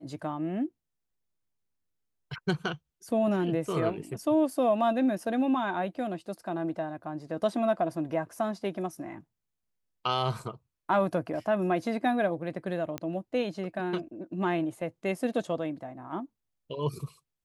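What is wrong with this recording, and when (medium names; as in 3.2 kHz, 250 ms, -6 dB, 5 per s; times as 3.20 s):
12.98 s: pop -19 dBFS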